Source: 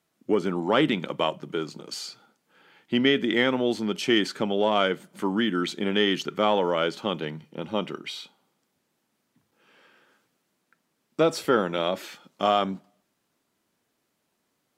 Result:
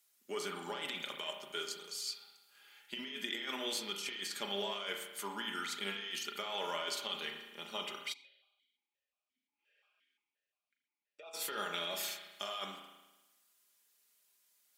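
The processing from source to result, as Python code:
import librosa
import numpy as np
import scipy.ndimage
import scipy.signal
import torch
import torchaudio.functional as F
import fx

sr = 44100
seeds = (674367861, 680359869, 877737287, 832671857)

y = np.diff(x, prepend=0.0)
y = y + 0.58 * np.pad(y, (int(4.9 * sr / 1000.0), 0))[:len(y)]
y = fx.over_compress(y, sr, threshold_db=-42.0, ratio=-1.0)
y = fx.rev_spring(y, sr, rt60_s=1.1, pass_ms=(35,), chirp_ms=30, drr_db=3.0)
y = fx.vowel_held(y, sr, hz=5.7, at=(8.12, 11.33), fade=0.02)
y = F.gain(torch.from_numpy(y), 1.5).numpy()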